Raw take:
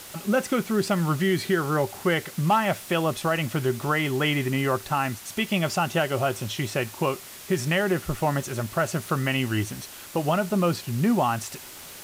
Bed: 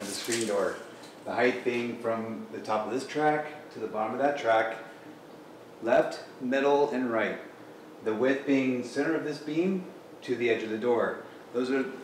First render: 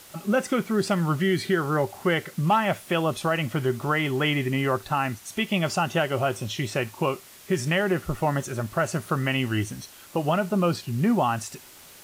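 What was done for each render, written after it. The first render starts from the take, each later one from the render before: noise print and reduce 6 dB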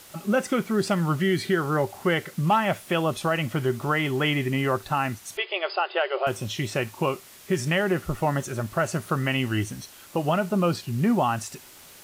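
5.37–6.27 s: brick-wall FIR band-pass 340–5100 Hz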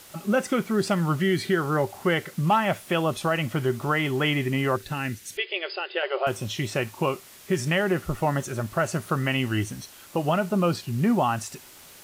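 4.76–6.03 s: high-order bell 910 Hz -10.5 dB 1.3 oct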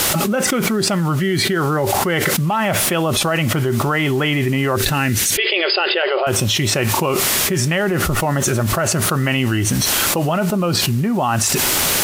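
level flattener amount 100%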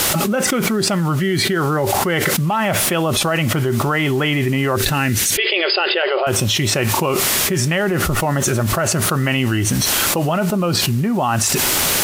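no audible change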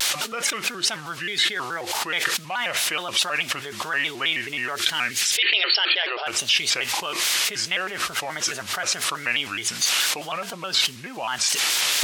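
band-pass filter 3.5 kHz, Q 0.79; vibrato with a chosen wave square 4.7 Hz, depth 160 cents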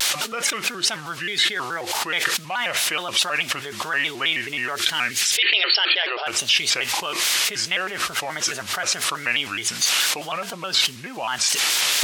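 trim +1.5 dB; peak limiter -3 dBFS, peak gain reduction 1 dB

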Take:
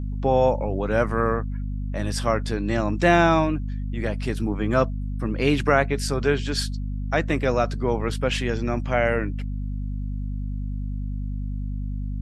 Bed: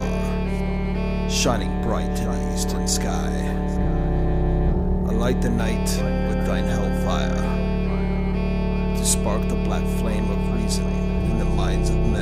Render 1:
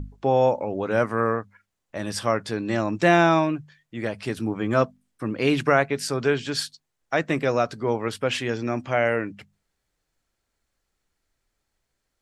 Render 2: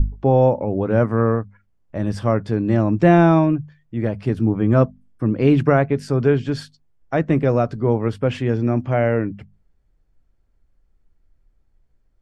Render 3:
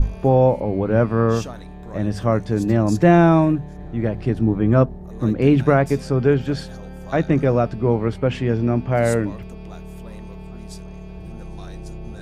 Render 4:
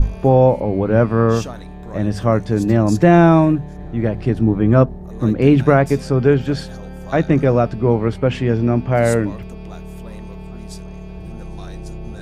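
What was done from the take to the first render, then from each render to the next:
hum notches 50/100/150/200/250 Hz
tilt EQ -4 dB/octave; band-stop 3.9 kHz, Q 22
add bed -14 dB
trim +3 dB; peak limiter -1 dBFS, peak gain reduction 1.5 dB

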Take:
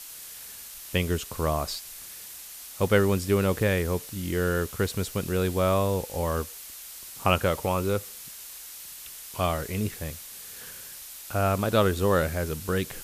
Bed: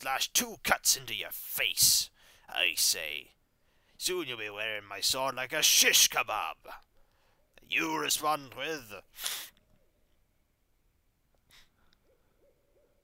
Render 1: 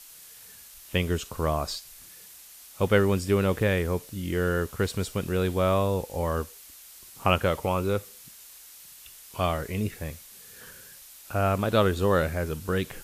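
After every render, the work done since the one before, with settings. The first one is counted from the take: noise print and reduce 6 dB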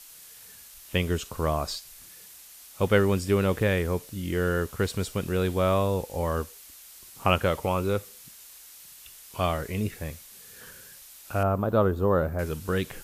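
11.43–12.39 s: high-order bell 4.6 kHz -16 dB 3 oct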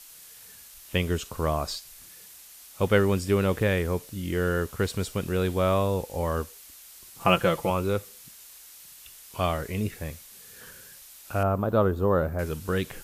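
7.20–7.70 s: comb 5.9 ms, depth 72%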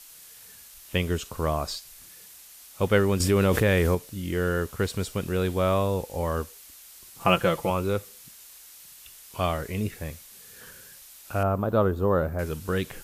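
3.20–3.95 s: level flattener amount 70%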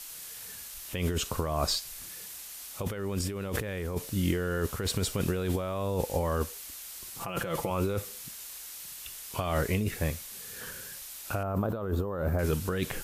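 compressor with a negative ratio -30 dBFS, ratio -1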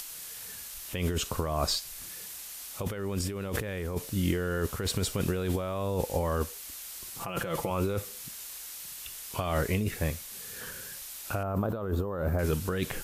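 upward compressor, threshold -38 dBFS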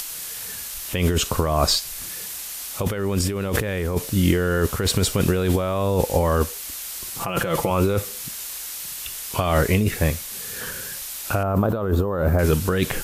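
trim +9.5 dB

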